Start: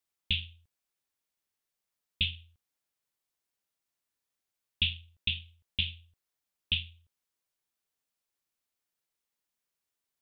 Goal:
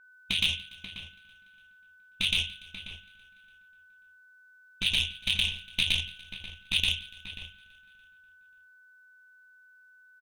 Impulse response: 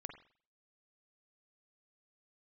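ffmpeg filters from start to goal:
-filter_complex "[0:a]asplit=2[link_01][link_02];[1:a]atrim=start_sample=2205,adelay=117[link_03];[link_02][link_03]afir=irnorm=-1:irlink=0,volume=3dB[link_04];[link_01][link_04]amix=inputs=2:normalize=0,afftfilt=real='re*lt(hypot(re,im),0.126)':imag='im*lt(hypot(re,im),0.126)':win_size=1024:overlap=0.75,aeval=exprs='0.112*(cos(1*acos(clip(val(0)/0.112,-1,1)))-cos(1*PI/2))+0.00794*(cos(7*acos(clip(val(0)/0.112,-1,1)))-cos(7*PI/2))':channel_layout=same,asplit=2[link_05][link_06];[link_06]aecho=0:1:289|578|867|1156:0.0708|0.0404|0.023|0.0131[link_07];[link_05][link_07]amix=inputs=2:normalize=0,aeval=exprs='val(0)+0.001*sin(2*PI*1500*n/s)':channel_layout=same,asubboost=boost=3.5:cutoff=60,asplit=2[link_08][link_09];[link_09]adelay=536.4,volume=-10dB,highshelf=frequency=4000:gain=-12.1[link_10];[link_08][link_10]amix=inputs=2:normalize=0,adynamicequalizer=threshold=0.00447:dfrequency=2000:dqfactor=0.7:tfrequency=2000:tqfactor=0.7:attack=5:release=100:ratio=0.375:range=2.5:mode=boostabove:tftype=highshelf,volume=6dB"

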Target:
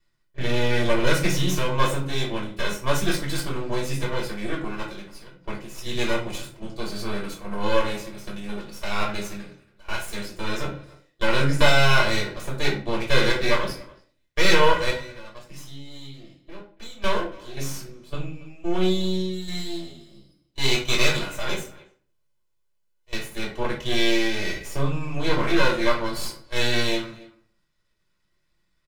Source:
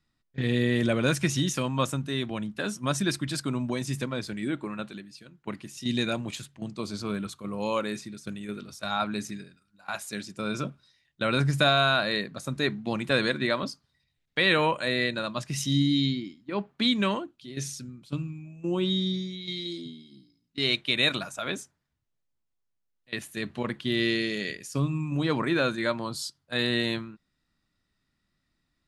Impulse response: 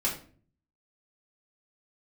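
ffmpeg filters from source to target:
-filter_complex "[0:a]lowshelf=frequency=95:gain=-8.5,aecho=1:1:2:0.67,asettb=1/sr,asplit=3[link_01][link_02][link_03];[link_01]atrim=end=14.904[link_04];[link_02]atrim=start=14.9:end=17.04,asetpts=PTS-STARTPTS,afade=type=in:duration=0.004:curve=qsin,afade=type=out:start_time=2.136:duration=0.004:curve=qsin,acompressor=threshold=-48dB:ratio=3[link_05];[link_03]atrim=start=17.036[link_06];[link_04][link_05]acrossfade=duration=0.004:curve1=hsin:curve2=qsin[link_07];[link_07][link_06]acrossfade=duration=0.004:curve1=qsin:curve2=hsin,aeval=exprs='max(val(0),0)':channel_layout=same,asplit=2[link_08][link_09];[link_09]adelay=280,highpass=300,lowpass=3400,asoftclip=type=hard:threshold=-26.5dB,volume=-20dB[link_10];[link_08][link_10]amix=inputs=2:normalize=0[link_11];[1:a]atrim=start_sample=2205,afade=type=out:start_time=0.41:duration=0.01,atrim=end_sample=18522[link_12];[link_11][link_12]afir=irnorm=-1:irlink=0,volume=-1dB"

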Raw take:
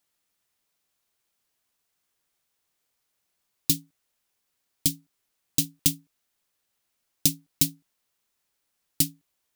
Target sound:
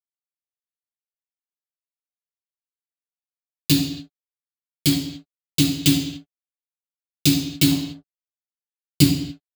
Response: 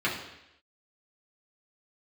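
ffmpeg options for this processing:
-filter_complex "[0:a]asettb=1/sr,asplit=3[link_01][link_02][link_03];[link_01]atrim=end=7.664[link_04];[link_02]atrim=start=7.66:end=9.02,asetpts=PTS-STARTPTS,afade=type=in:duration=0.004:curve=qsin,afade=type=out:start_time=1.356:duration=0.004:curve=qsin,lowshelf=frequency=350:gain=7.5[link_05];[link_03]atrim=start=9.016[link_06];[link_04][link_05]acrossfade=duration=0.004:curve1=hsin:curve2=qsin[link_07];[link_07][link_06]acrossfade=duration=0.004:curve1=qsin:curve2=hsin,acrusher=bits=5:mix=0:aa=0.5[link_08];[1:a]atrim=start_sample=2205,afade=type=out:start_time=0.35:duration=0.01,atrim=end_sample=15876[link_09];[link_08][link_09]afir=irnorm=-1:irlink=0,volume=1.5dB"

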